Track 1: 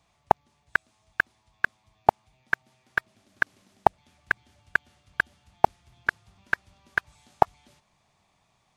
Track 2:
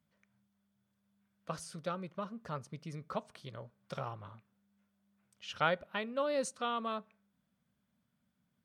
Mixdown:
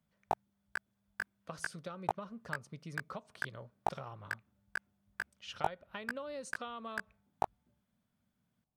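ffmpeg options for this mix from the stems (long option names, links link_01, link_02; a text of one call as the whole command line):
ffmpeg -i stem1.wav -i stem2.wav -filter_complex "[0:a]adynamicsmooth=sensitivity=3:basefreq=510,flanger=delay=17:depth=2.7:speed=1.3,volume=-11.5dB[link_01];[1:a]acompressor=threshold=-38dB:ratio=12,volume=-1.5dB[link_02];[link_01][link_02]amix=inputs=2:normalize=0" out.wav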